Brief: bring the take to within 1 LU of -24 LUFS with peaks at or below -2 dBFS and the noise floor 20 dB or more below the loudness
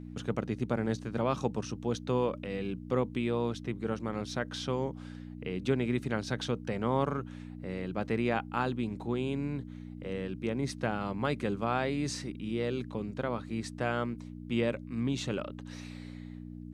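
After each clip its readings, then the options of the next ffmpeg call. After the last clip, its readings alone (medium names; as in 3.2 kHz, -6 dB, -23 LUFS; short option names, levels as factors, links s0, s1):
hum 60 Hz; highest harmonic 300 Hz; hum level -41 dBFS; loudness -33.5 LUFS; peak level -14.5 dBFS; loudness target -24.0 LUFS
-> -af "bandreject=f=60:t=h:w=4,bandreject=f=120:t=h:w=4,bandreject=f=180:t=h:w=4,bandreject=f=240:t=h:w=4,bandreject=f=300:t=h:w=4"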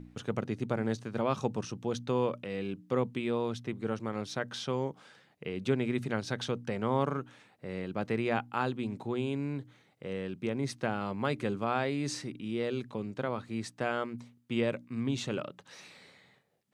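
hum not found; loudness -34.0 LUFS; peak level -14.0 dBFS; loudness target -24.0 LUFS
-> -af "volume=3.16"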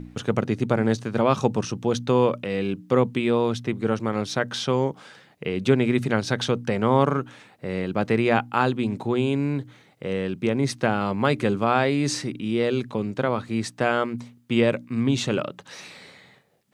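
loudness -24.0 LUFS; peak level -4.0 dBFS; noise floor -56 dBFS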